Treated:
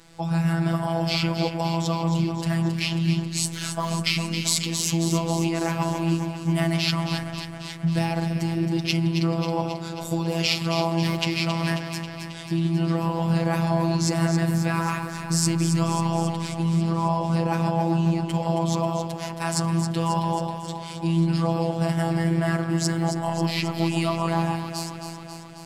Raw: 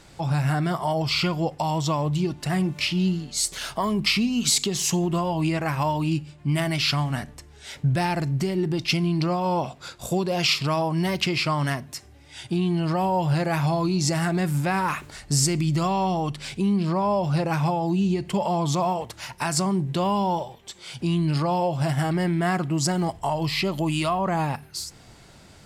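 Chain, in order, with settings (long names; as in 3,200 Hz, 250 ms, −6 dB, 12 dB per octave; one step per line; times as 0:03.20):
delay that swaps between a low-pass and a high-pass 135 ms, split 1,600 Hz, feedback 81%, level −6.5 dB
phases set to zero 166 Hz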